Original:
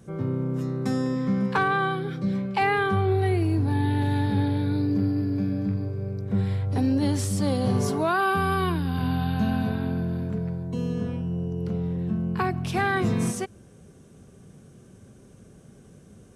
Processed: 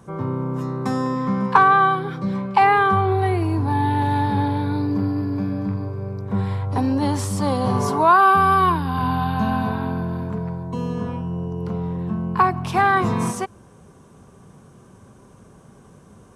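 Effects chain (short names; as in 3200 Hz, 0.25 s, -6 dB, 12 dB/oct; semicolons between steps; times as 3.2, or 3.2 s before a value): bell 1000 Hz +14.5 dB 0.76 oct; gain +1.5 dB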